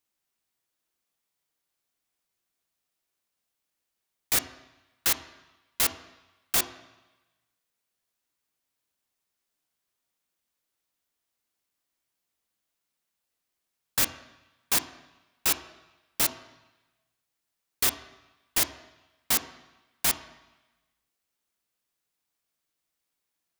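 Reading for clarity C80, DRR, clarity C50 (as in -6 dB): 14.5 dB, 9.0 dB, 12.5 dB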